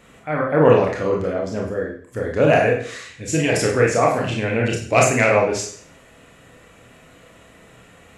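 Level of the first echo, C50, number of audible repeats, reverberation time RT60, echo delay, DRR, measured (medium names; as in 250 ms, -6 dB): no echo, 5.0 dB, no echo, 0.55 s, no echo, -1.0 dB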